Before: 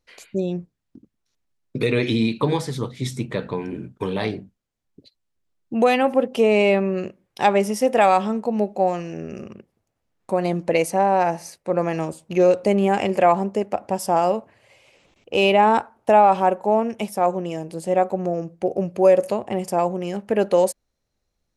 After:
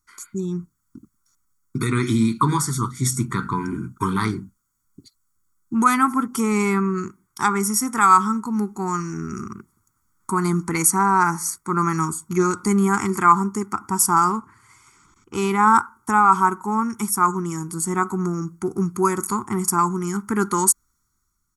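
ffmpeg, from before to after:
ffmpeg -i in.wav -filter_complex "[0:a]asettb=1/sr,asplit=3[link_01][link_02][link_03];[link_01]atrim=end=14.244[link_04];[link_02]atrim=start=14.24:end=15.51,asetpts=PTS-STARTPTS,afade=type=in:duration=0.004:curve=qsin,afade=type=out:start_time=1.266:duration=0.004:curve=qsin,highshelf=frequency=10000:gain=-11.5[link_05];[link_03]atrim=start=15.506[link_06];[link_04][link_05]acrossfade=duration=0.004:curve1=hsin:curve2=qsin[link_07];[link_07][link_06]acrossfade=duration=0.004:curve1=qsin:curve2=hsin,aecho=1:1:0.9:0.74,dynaudnorm=framelen=190:gausssize=7:maxgain=7dB,firequalizer=gain_entry='entry(380,0);entry(590,-26);entry(930,3);entry(1400,14);entry(2500,-12);entry(6800,14)':delay=0.05:min_phase=1,volume=-5dB" out.wav

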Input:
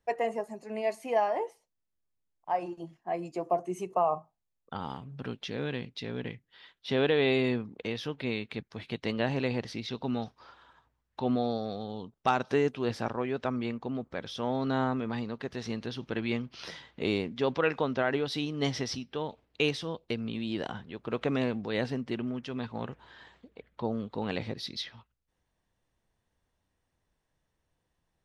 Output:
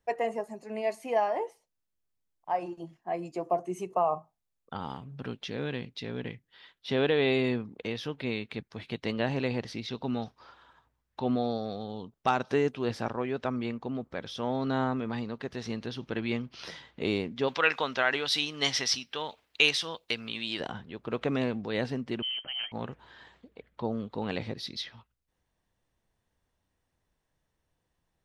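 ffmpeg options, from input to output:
ffmpeg -i in.wav -filter_complex "[0:a]asplit=3[link_01][link_02][link_03];[link_01]afade=type=out:start_time=17.47:duration=0.02[link_04];[link_02]tiltshelf=frequency=710:gain=-10,afade=type=in:start_time=17.47:duration=0.02,afade=type=out:start_time=20.59:duration=0.02[link_05];[link_03]afade=type=in:start_time=20.59:duration=0.02[link_06];[link_04][link_05][link_06]amix=inputs=3:normalize=0,asettb=1/sr,asplit=3[link_07][link_08][link_09];[link_07]atrim=end=22.224[link_10];[link_08]atrim=start=22.22:end=22.72,asetpts=PTS-STARTPTS,afade=type=in:duration=0.004:curve=qsin,afade=type=out:start_time=0.496:duration=0.004:curve=qsin,lowpass=frequency=2800:width_type=q:width=0.5098,lowpass=frequency=2800:width_type=q:width=0.6013,lowpass=frequency=2800:width_type=q:width=0.9,lowpass=frequency=2800:width_type=q:width=2.563,afreqshift=-3300[link_11];[link_09]atrim=start=22.716[link_12];[link_10][link_11]acrossfade=duration=0.004:curve1=hsin:curve2=qsin[link_13];[link_13][link_12]acrossfade=duration=0.004:curve1=qsin:curve2=hsin" out.wav

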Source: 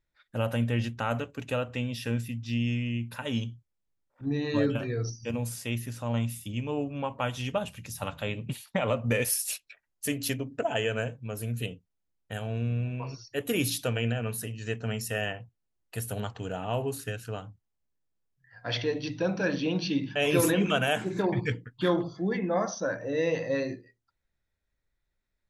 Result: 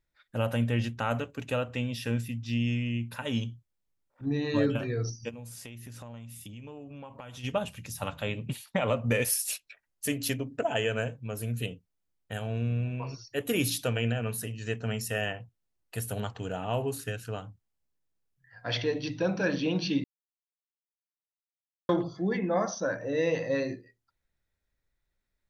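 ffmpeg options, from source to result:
ffmpeg -i in.wav -filter_complex "[0:a]asplit=3[link_01][link_02][link_03];[link_01]afade=type=out:start_time=5.28:duration=0.02[link_04];[link_02]acompressor=threshold=-40dB:ratio=10:attack=3.2:release=140:knee=1:detection=peak,afade=type=in:start_time=5.28:duration=0.02,afade=type=out:start_time=7.43:duration=0.02[link_05];[link_03]afade=type=in:start_time=7.43:duration=0.02[link_06];[link_04][link_05][link_06]amix=inputs=3:normalize=0,asplit=3[link_07][link_08][link_09];[link_07]atrim=end=20.04,asetpts=PTS-STARTPTS,afade=type=out:start_time=20.036:duration=0.004:curve=hsin[link_10];[link_08]atrim=start=20.04:end=21.89,asetpts=PTS-STARTPTS,volume=0[link_11];[link_09]atrim=start=21.89,asetpts=PTS-STARTPTS,afade=type=in:duration=0.004:curve=hsin[link_12];[link_10][link_11][link_12]concat=n=3:v=0:a=1" out.wav

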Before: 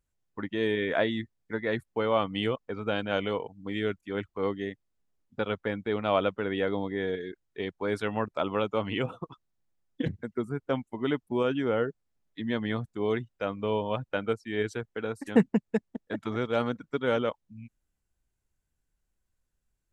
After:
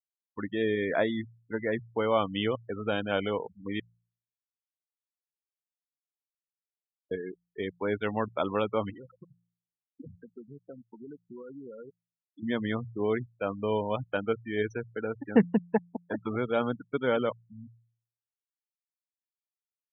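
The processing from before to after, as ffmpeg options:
ffmpeg -i in.wav -filter_complex "[0:a]asettb=1/sr,asplit=3[link_01][link_02][link_03];[link_01]atrim=end=0.624[link_04];[link_02]atrim=start=0.62:end=1.76,asetpts=PTS-STARTPTS,afade=type=in:duration=0.004:curve=qsin,afade=type=out:start_time=1.136:duration=0.004:curve=qsin,highshelf=frequency=2500:gain=-4.5[link_05];[link_03]atrim=start=1.756[link_06];[link_04][link_05]acrossfade=duration=0.004:curve1=hsin:curve2=qsin[link_07];[link_07][link_06]acrossfade=duration=0.004:curve1=qsin:curve2=hsin,asettb=1/sr,asplit=3[link_08][link_09][link_10];[link_08]atrim=end=8.904[link_11];[link_09]atrim=start=8.9:end=12.43,asetpts=PTS-STARTPTS,afade=type=in:duration=0.004:curve=qsin,afade=type=out:start_time=3.526:duration=0.004:curve=qsin,acompressor=threshold=-46dB:ratio=3:attack=3.2:release=140:knee=1:detection=peak[link_12];[link_10]atrim=start=12.426[link_13];[link_11][link_12]acrossfade=duration=0.004:curve1=hsin:curve2=qsin[link_14];[link_14][link_13]acrossfade=duration=0.004:curve1=qsin:curve2=hsin,asettb=1/sr,asplit=3[link_15][link_16][link_17];[link_15]atrim=end=15.694[link_18];[link_16]atrim=start=15.69:end=16.13,asetpts=PTS-STARTPTS,afade=type=in:duration=0.004:curve=qsin,afade=type=out:start_time=0.436:duration=0.004:curve=qsin,equalizer=frequency=850:width=2.2:gain=13[link_19];[link_17]atrim=start=16.126[link_20];[link_18][link_19]acrossfade=duration=0.004:curve1=hsin:curve2=qsin[link_21];[link_21][link_20]acrossfade=duration=0.004:curve1=qsin:curve2=hsin,asplit=3[link_22][link_23][link_24];[link_22]atrim=end=3.8,asetpts=PTS-STARTPTS,afade=type=out:start_time=3.796:duration=0.004:curve=hsin[link_25];[link_23]atrim=start=3.8:end=7.11,asetpts=PTS-STARTPTS,volume=0[link_26];[link_24]atrim=start=7.11,asetpts=PTS-STARTPTS,afade=type=in:duration=0.004:curve=hsin[link_27];[link_25][link_26][link_27]concat=n=3:v=0:a=1,afftfilt=real='re*gte(hypot(re,im),0.02)':imag='im*gte(hypot(re,im),0.02)':win_size=1024:overlap=0.75,bandreject=frequency=57.83:width_type=h:width=4,bandreject=frequency=115.66:width_type=h:width=4,bandreject=frequency=173.49:width_type=h:width=4" out.wav

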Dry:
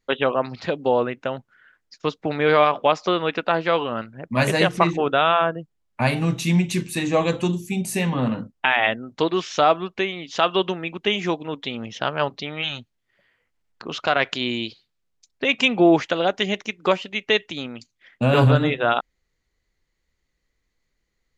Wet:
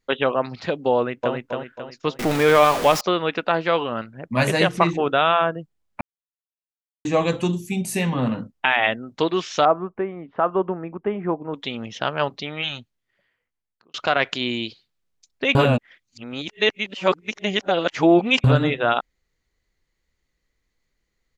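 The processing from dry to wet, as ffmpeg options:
ffmpeg -i in.wav -filter_complex "[0:a]asplit=2[link_01][link_02];[link_02]afade=type=in:start_time=0.96:duration=0.01,afade=type=out:start_time=1.36:duration=0.01,aecho=0:1:270|540|810|1080|1350|1620:0.707946|0.318576|0.143359|0.0645116|0.0290302|0.0130636[link_03];[link_01][link_03]amix=inputs=2:normalize=0,asettb=1/sr,asplit=3[link_04][link_05][link_06];[link_04]atrim=end=2.194[link_07];[link_05]atrim=start=2.19:end=3.01,asetpts=PTS-STARTPTS,afade=type=in:duration=0.004:curve=qsin,afade=type=out:start_time=0.816:duration=0.004:curve=qsin,aeval=exprs='val(0)+0.5*0.0891*sgn(val(0))':channel_layout=same[link_08];[link_06]atrim=start=3.006[link_09];[link_07][link_08]acrossfade=duration=0.004:curve1=hsin:curve2=qsin[link_10];[link_10][link_09]acrossfade=duration=0.004:curve1=qsin:curve2=hsin,asettb=1/sr,asplit=3[link_11][link_12][link_13];[link_11]atrim=end=9.654[link_14];[link_12]atrim=start=9.65:end=11.54,asetpts=PTS-STARTPTS,afade=type=in:duration=0.004:curve=qsin,afade=type=out:start_time=1.886:duration=0.004:curve=qsin,lowpass=frequency=1400:width=0.5412,lowpass=frequency=1400:width=1.3066[link_15];[link_13]atrim=start=11.536[link_16];[link_14][link_15]acrossfade=duration=0.004:curve1=hsin:curve2=qsin[link_17];[link_17][link_16]acrossfade=duration=0.004:curve1=qsin:curve2=hsin,asplit=6[link_18][link_19][link_20][link_21][link_22][link_23];[link_18]atrim=end=6.01,asetpts=PTS-STARTPTS,afade=type=out:start_time=6.006:duration=0.004:curve=hsin[link_24];[link_19]atrim=start=6.01:end=7.05,asetpts=PTS-STARTPTS,volume=0[link_25];[link_20]atrim=start=7.05:end=13.94,asetpts=PTS-STARTPTS,afade=type=in:duration=0.004:curve=hsin,afade=type=out:start_time=5.57:duration=1.32[link_26];[link_21]atrim=start=13.94:end=15.552,asetpts=PTS-STARTPTS,afade=type=in:duration=0.004:curve=hsin[link_27];[link_22]atrim=start=15.548:end=18.442,asetpts=PTS-STARTPTS,areverse[link_28];[link_23]atrim=start=18.438[link_29];[link_24][link_25][link_26][link_27]concat=n=4:v=0:a=1[link_30];[link_30][link_28]acrossfade=duration=0.004:curve1=hsin:curve2=hsin[link_31];[link_31][link_29]acrossfade=duration=0.004:curve1=hsin:curve2=hsin" out.wav

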